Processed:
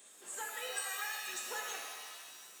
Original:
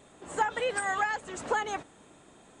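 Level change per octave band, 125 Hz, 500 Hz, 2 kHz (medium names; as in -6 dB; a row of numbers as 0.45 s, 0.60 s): under -25 dB, -15.5 dB, -8.5 dB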